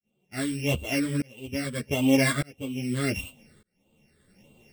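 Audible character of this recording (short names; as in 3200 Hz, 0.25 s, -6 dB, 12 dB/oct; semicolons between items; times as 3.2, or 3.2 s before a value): a buzz of ramps at a fixed pitch in blocks of 16 samples; phasing stages 8, 1.6 Hz, lowest notch 780–1700 Hz; tremolo saw up 0.83 Hz, depth 100%; a shimmering, thickened sound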